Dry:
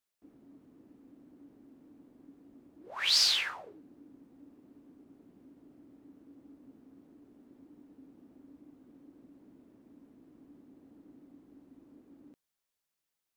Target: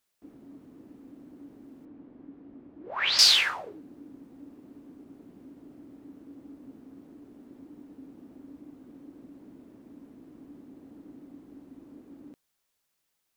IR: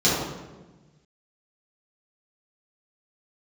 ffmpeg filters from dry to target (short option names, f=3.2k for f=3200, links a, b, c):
-filter_complex "[0:a]asettb=1/sr,asplit=3[a][b][c];[a]atrim=end=1.854[d];[b]atrim=start=1.85:end=3.19,asetpts=PTS-STARTPTS,afade=t=in:d=0.004:c=qsin,afade=t=out:st=1.336:d=0.004:c=qsin,lowpass=2.5k[e];[c]atrim=start=3.186[f];[d][e]acrossfade=d=0.004:c1=hsin:c2=qsin[g];[g][f]acrossfade=d=0.004:c1=qsin:c2=hsin,volume=8dB"